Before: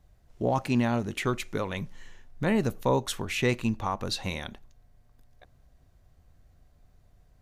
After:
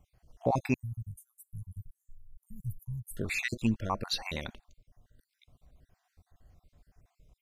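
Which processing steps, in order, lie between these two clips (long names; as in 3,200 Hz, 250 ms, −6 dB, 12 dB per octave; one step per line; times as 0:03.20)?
time-frequency cells dropped at random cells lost 46%
0:00.74–0:03.17: inverse Chebyshev band-stop filter 300–4,800 Hz, stop band 50 dB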